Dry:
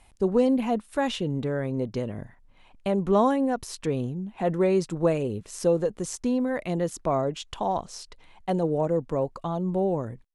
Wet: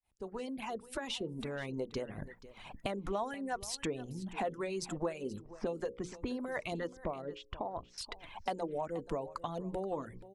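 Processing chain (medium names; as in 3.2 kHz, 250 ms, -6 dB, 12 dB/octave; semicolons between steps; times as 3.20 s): fade-in on the opening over 2.68 s; 5.41–6.36 s: level-controlled noise filter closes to 600 Hz, open at -20 dBFS; reverb removal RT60 0.77 s; hum notches 60/120/180/240/300/360/420/480/540 Hz; harmonic-percussive split harmonic -12 dB; compression 4:1, threshold -48 dBFS, peak gain reduction 21.5 dB; 6.87–7.98 s: tape spacing loss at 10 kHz 36 dB; delay 479 ms -17 dB; trim +11 dB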